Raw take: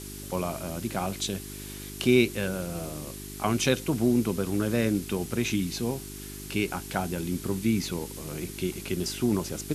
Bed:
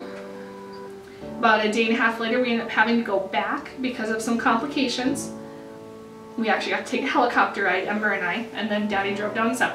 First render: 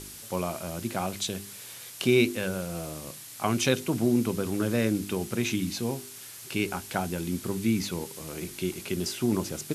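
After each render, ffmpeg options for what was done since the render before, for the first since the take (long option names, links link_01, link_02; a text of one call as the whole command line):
ffmpeg -i in.wav -af "bandreject=frequency=50:width_type=h:width=4,bandreject=frequency=100:width_type=h:width=4,bandreject=frequency=150:width_type=h:width=4,bandreject=frequency=200:width_type=h:width=4,bandreject=frequency=250:width_type=h:width=4,bandreject=frequency=300:width_type=h:width=4,bandreject=frequency=350:width_type=h:width=4,bandreject=frequency=400:width_type=h:width=4" out.wav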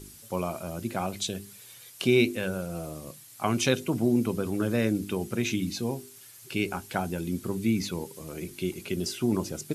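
ffmpeg -i in.wav -af "afftdn=noise_reduction=9:noise_floor=-44" out.wav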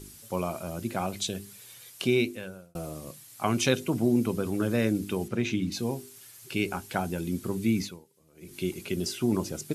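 ffmpeg -i in.wav -filter_complex "[0:a]asettb=1/sr,asplit=3[link_01][link_02][link_03];[link_01]atrim=end=5.284[link_04];[link_02]atrim=start=5.28:end=5.72,asetpts=PTS-STARTPTS,afade=type=in:duration=0.004:curve=qsin,afade=type=out:start_time=0.436:duration=0.004:curve=qsin,aemphasis=mode=reproduction:type=50fm[link_05];[link_03]atrim=start=5.716[link_06];[link_04][link_05]acrossfade=duration=0.004:curve1=hsin:curve2=qsin[link_07];[link_07][link_06]acrossfade=duration=0.004:curve1=qsin:curve2=hsin,asplit=4[link_08][link_09][link_10][link_11];[link_08]atrim=end=2.75,asetpts=PTS-STARTPTS,afade=type=out:start_time=1.92:duration=0.83[link_12];[link_09]atrim=start=2.75:end=8.06,asetpts=PTS-STARTPTS,afade=type=in:duration=0.004:curve=hsin,afade=type=out:start_time=5.06:duration=0.25:curve=qua:silence=0.0749894[link_13];[link_10]atrim=start=8.06:end=8.31,asetpts=PTS-STARTPTS,volume=-22.5dB[link_14];[link_11]atrim=start=8.31,asetpts=PTS-STARTPTS,afade=type=in:duration=0.25:curve=qua:silence=0.0749894[link_15];[link_12][link_13][link_14][link_15]concat=n=4:v=0:a=1" out.wav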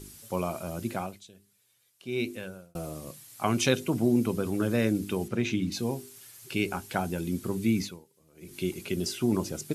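ffmpeg -i in.wav -filter_complex "[0:a]asplit=3[link_01][link_02][link_03];[link_01]atrim=end=1.21,asetpts=PTS-STARTPTS,afade=type=out:start_time=0.91:duration=0.3:silence=0.1[link_04];[link_02]atrim=start=1.21:end=2.04,asetpts=PTS-STARTPTS,volume=-20dB[link_05];[link_03]atrim=start=2.04,asetpts=PTS-STARTPTS,afade=type=in:duration=0.3:silence=0.1[link_06];[link_04][link_05][link_06]concat=n=3:v=0:a=1" out.wav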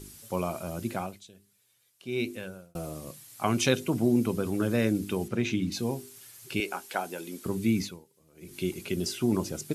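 ffmpeg -i in.wav -filter_complex "[0:a]asettb=1/sr,asplit=3[link_01][link_02][link_03];[link_01]atrim=end=6.604[link_04];[link_02]atrim=start=6.6:end=7.46,asetpts=PTS-STARTPTS,afade=type=in:duration=0.004:curve=qsin,afade=type=out:start_time=0.856:duration=0.004:curve=qsin,highpass=410[link_05];[link_03]atrim=start=7.456[link_06];[link_04][link_05]acrossfade=duration=0.004:curve1=hsin:curve2=qsin[link_07];[link_07][link_06]acrossfade=duration=0.004:curve1=qsin:curve2=hsin" out.wav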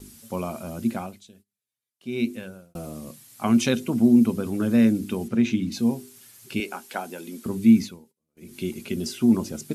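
ffmpeg -i in.wav -af "agate=range=-21dB:threshold=-56dB:ratio=16:detection=peak,equalizer=frequency=230:width_type=o:width=0.23:gain=13.5" out.wav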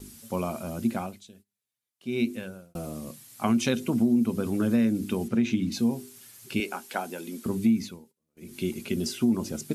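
ffmpeg -i in.wav -af "acompressor=threshold=-20dB:ratio=4" out.wav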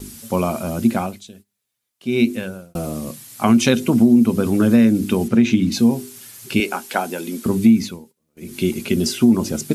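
ffmpeg -i in.wav -af "volume=10dB,alimiter=limit=-2dB:level=0:latency=1" out.wav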